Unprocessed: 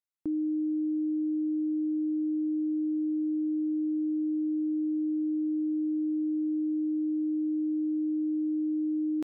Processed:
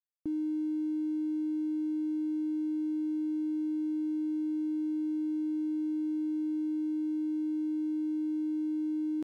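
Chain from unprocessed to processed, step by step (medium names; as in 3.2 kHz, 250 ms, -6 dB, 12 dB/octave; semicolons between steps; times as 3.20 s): bass shelf 390 Hz +9 dB; crossover distortion -50 dBFS; trim -8 dB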